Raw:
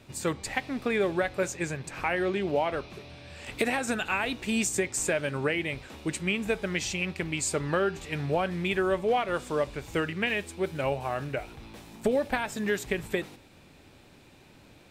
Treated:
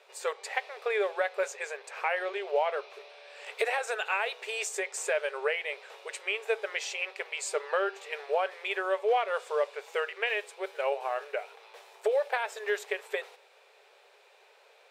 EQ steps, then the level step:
linear-phase brick-wall high-pass 390 Hz
high-shelf EQ 5,600 Hz −9.5 dB
0.0 dB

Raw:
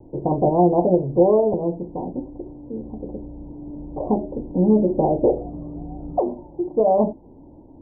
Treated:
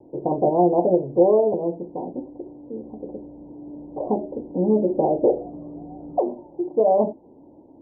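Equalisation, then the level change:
resonant band-pass 520 Hz, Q 0.7
0.0 dB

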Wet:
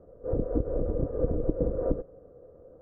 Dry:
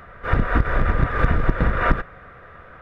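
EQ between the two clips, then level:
transistor ladder low-pass 550 Hz, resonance 70%
parametric band 300 Hz +8.5 dB 0.38 octaves
0.0 dB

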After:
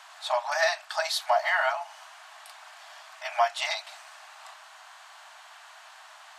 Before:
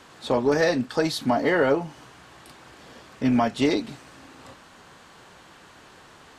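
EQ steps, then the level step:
linear-phase brick-wall high-pass 600 Hz
+1.5 dB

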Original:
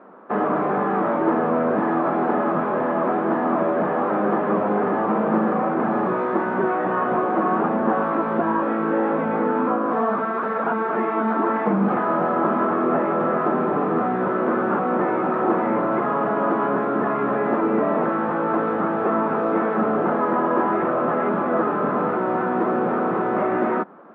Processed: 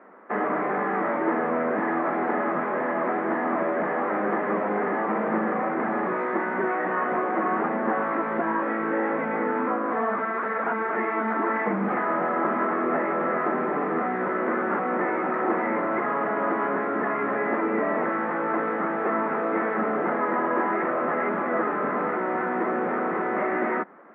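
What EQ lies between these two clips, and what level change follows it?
high-pass filter 200 Hz 12 dB per octave
low-pass filter 2,600 Hz 6 dB per octave
parametric band 2,000 Hz +14.5 dB 0.52 octaves
−4.5 dB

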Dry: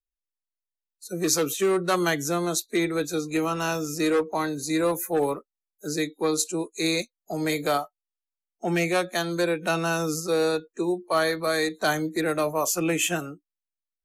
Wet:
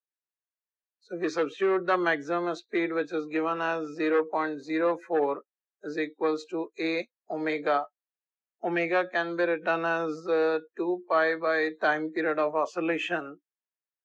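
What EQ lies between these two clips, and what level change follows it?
band-pass filter 340–2,600 Hz
high-frequency loss of the air 110 metres
parametric band 1,700 Hz +5.5 dB 0.2 octaves
0.0 dB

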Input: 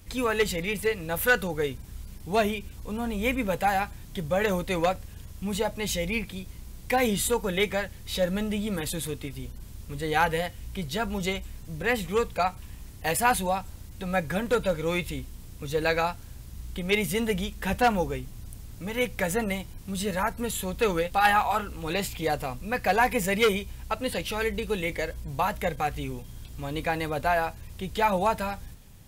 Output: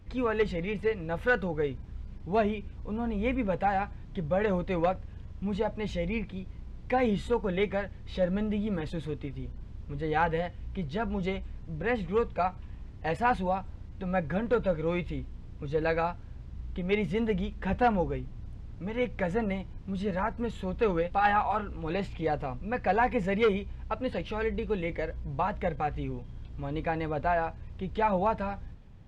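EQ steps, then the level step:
head-to-tape spacing loss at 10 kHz 33 dB
0.0 dB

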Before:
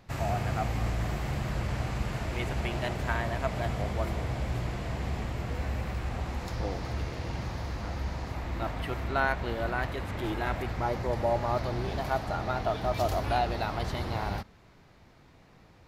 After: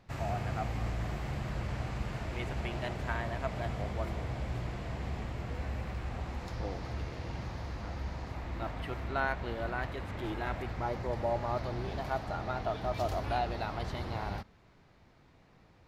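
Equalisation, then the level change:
high-shelf EQ 8,700 Hz −8.5 dB
−4.5 dB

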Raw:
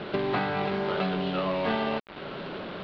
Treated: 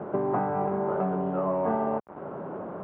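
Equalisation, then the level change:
high-pass filter 84 Hz
transistor ladder low-pass 1,200 Hz, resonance 30%
high-frequency loss of the air 73 metres
+7.0 dB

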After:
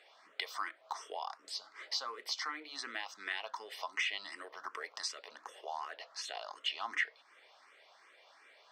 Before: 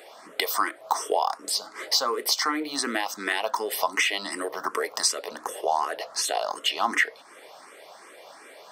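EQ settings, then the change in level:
high-frequency loss of the air 170 metres
bass and treble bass 0 dB, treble −8 dB
first-order pre-emphasis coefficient 0.97
+2.5 dB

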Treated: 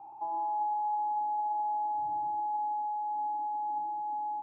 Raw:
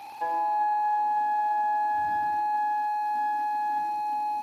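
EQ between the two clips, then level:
low-pass filter 1,300 Hz 24 dB per octave
high-frequency loss of the air 150 metres
phaser with its sweep stopped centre 340 Hz, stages 8
−5.0 dB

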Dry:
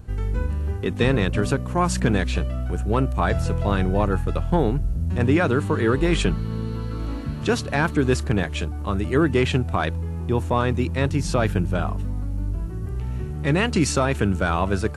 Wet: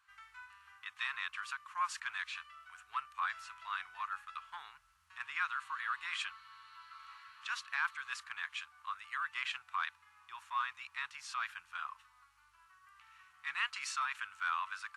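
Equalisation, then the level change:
elliptic high-pass filter 1,100 Hz, stop band 50 dB
low-pass filter 2,500 Hz 6 dB per octave
−6.5 dB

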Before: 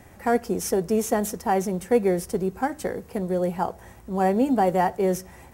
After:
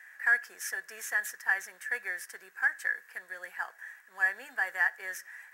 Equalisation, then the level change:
high-pass with resonance 1,700 Hz, resonance Q 14
parametric band 3,600 Hz −3.5 dB 1.1 octaves
parametric band 9,700 Hz −2 dB 0.28 octaves
−7.0 dB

